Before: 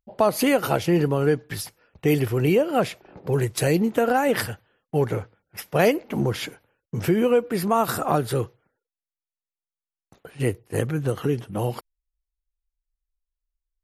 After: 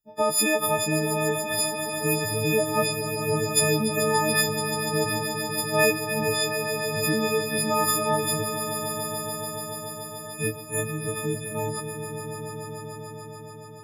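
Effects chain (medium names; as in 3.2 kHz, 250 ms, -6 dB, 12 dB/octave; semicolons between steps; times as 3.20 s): partials quantised in pitch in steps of 6 st; echo with a slow build-up 144 ms, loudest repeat 5, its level -10 dB; trim -6 dB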